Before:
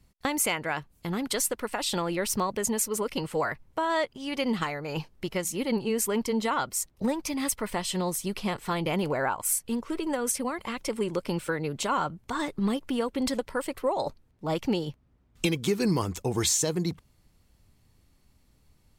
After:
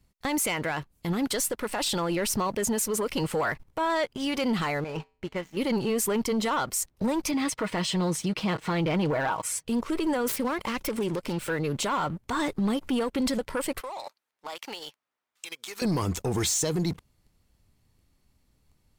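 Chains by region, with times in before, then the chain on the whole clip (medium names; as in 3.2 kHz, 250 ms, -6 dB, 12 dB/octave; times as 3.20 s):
4.84–5.57 s: low-pass 2.8 kHz + feedback comb 87 Hz, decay 0.44 s, harmonics odd, mix 70% + sliding maximum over 3 samples
7.31–9.67 s: high-pass 69 Hz + distance through air 86 m + comb 6.3 ms, depth 49%
10.28–11.50 s: self-modulated delay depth 0.22 ms + band-stop 720 Hz, Q 17 + compression 2.5:1, threshold -32 dBFS
13.81–15.82 s: high-pass 1 kHz + compression 10:1, threshold -40 dBFS
whole clip: waveshaping leveller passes 2; peak limiter -21 dBFS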